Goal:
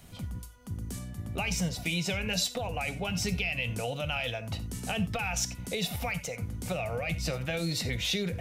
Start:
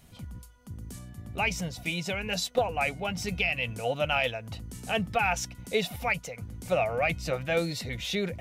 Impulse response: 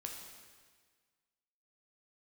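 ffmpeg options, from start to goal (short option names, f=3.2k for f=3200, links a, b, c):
-filter_complex "[0:a]alimiter=limit=-21.5dB:level=0:latency=1:release=21,asplit=2[a][b];[1:a]atrim=start_sample=2205,atrim=end_sample=4410[c];[b][c]afir=irnorm=-1:irlink=0,volume=-0.5dB[d];[a][d]amix=inputs=2:normalize=0,acrossover=split=190|3000[e][f][g];[f]acompressor=threshold=-33dB:ratio=6[h];[e][h][g]amix=inputs=3:normalize=0"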